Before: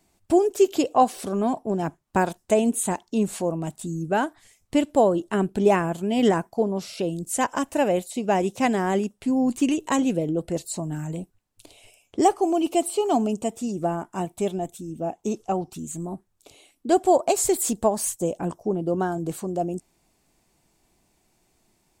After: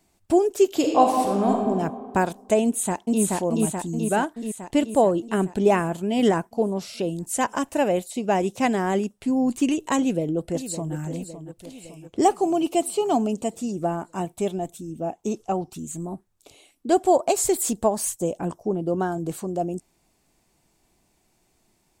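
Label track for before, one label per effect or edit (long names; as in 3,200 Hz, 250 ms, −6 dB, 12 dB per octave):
0.690000	1.670000	thrown reverb, RT60 1.9 s, DRR 0.5 dB
2.640000	3.220000	delay throw 430 ms, feedback 65%, level −0.5 dB
9.980000	10.950000	delay throw 560 ms, feedback 60%, level −11.5 dB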